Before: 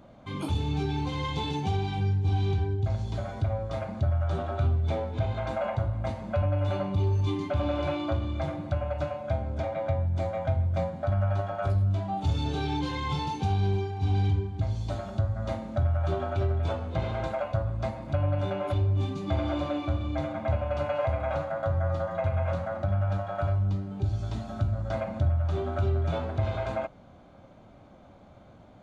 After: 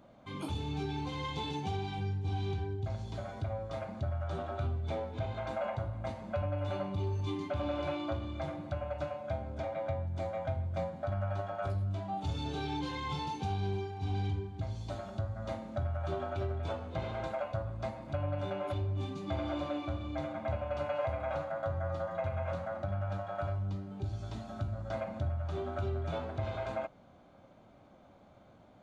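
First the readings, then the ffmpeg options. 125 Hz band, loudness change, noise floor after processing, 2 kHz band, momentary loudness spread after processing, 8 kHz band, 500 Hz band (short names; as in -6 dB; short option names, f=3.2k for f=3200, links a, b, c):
-9.0 dB, -7.5 dB, -59 dBFS, -5.0 dB, 4 LU, n/a, -5.5 dB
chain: -af "lowshelf=f=130:g=-6.5,volume=-5dB"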